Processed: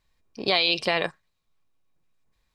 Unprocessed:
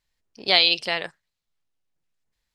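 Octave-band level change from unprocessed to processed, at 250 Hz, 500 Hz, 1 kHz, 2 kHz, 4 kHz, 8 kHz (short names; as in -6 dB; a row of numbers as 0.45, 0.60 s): +4.0, +2.0, 0.0, -2.0, -5.0, +0.5 dB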